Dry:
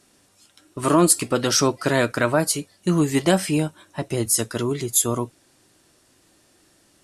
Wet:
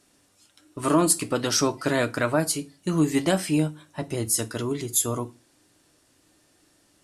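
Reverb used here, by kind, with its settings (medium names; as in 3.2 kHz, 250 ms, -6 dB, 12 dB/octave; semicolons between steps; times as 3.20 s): FDN reverb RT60 0.31 s, low-frequency decay 1.3×, high-frequency decay 0.9×, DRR 11.5 dB; trim -4 dB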